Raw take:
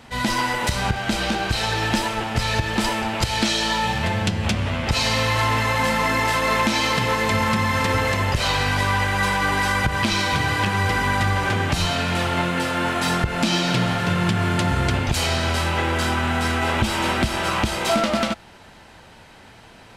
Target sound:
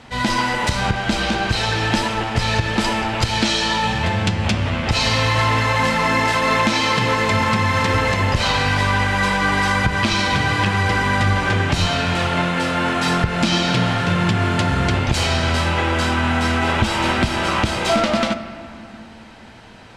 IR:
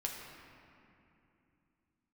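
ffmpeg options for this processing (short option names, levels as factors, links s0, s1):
-filter_complex "[0:a]lowpass=9900,asplit=2[s0][s1];[1:a]atrim=start_sample=2205,lowpass=8100[s2];[s1][s2]afir=irnorm=-1:irlink=0,volume=0.473[s3];[s0][s3]amix=inputs=2:normalize=0"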